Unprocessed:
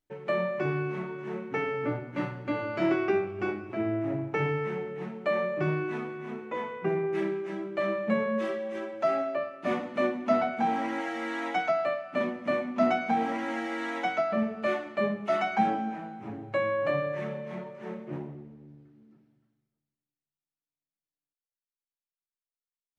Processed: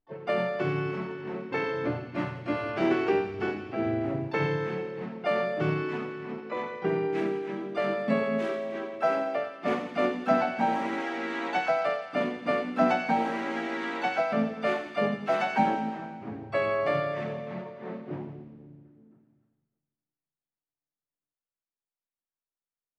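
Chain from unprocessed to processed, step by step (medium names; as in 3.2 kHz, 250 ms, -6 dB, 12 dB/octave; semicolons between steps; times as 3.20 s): level-controlled noise filter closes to 1.4 kHz, open at -24 dBFS; harmony voices -5 st -12 dB, +3 st -9 dB, +12 st -18 dB; feedback echo behind a high-pass 86 ms, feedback 67%, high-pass 2.6 kHz, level -8 dB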